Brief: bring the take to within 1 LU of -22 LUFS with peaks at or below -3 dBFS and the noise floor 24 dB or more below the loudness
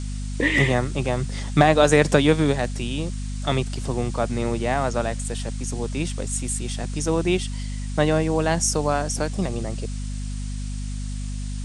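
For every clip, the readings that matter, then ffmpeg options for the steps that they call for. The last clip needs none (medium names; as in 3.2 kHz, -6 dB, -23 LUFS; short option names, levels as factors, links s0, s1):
hum 50 Hz; highest harmonic 250 Hz; hum level -26 dBFS; noise floor -29 dBFS; noise floor target -48 dBFS; loudness -23.5 LUFS; peak level -2.0 dBFS; loudness target -22.0 LUFS
-> -af "bandreject=f=50:t=h:w=6,bandreject=f=100:t=h:w=6,bandreject=f=150:t=h:w=6,bandreject=f=200:t=h:w=6,bandreject=f=250:t=h:w=6"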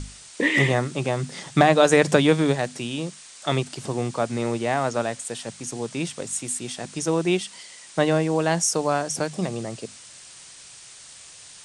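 hum not found; noise floor -45 dBFS; noise floor target -48 dBFS
-> -af "afftdn=nr=6:nf=-45"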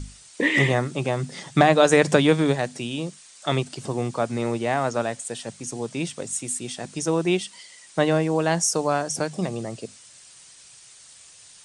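noise floor -49 dBFS; loudness -23.5 LUFS; peak level -2.0 dBFS; loudness target -22.0 LUFS
-> -af "volume=1.19,alimiter=limit=0.708:level=0:latency=1"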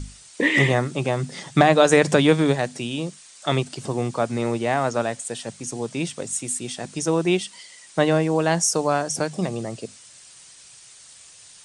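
loudness -22.0 LUFS; peak level -3.0 dBFS; noise floor -48 dBFS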